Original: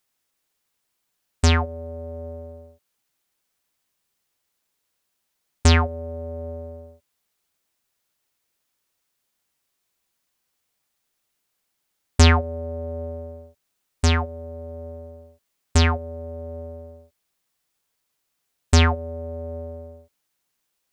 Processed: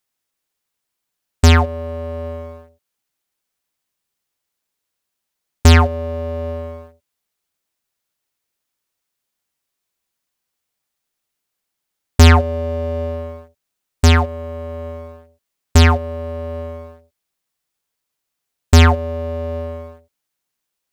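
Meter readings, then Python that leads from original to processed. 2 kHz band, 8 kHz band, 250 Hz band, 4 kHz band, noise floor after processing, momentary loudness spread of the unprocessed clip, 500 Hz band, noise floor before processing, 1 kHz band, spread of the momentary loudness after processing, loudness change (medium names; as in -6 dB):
+5.5 dB, +3.5 dB, +7.0 dB, +4.5 dB, -79 dBFS, 20 LU, +7.5 dB, -76 dBFS, +7.0 dB, 19 LU, +6.5 dB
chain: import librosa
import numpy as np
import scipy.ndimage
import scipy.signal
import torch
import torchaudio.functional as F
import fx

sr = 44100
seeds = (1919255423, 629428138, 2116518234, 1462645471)

y = fx.leveller(x, sr, passes=2)
y = y * 10.0 ** (1.0 / 20.0)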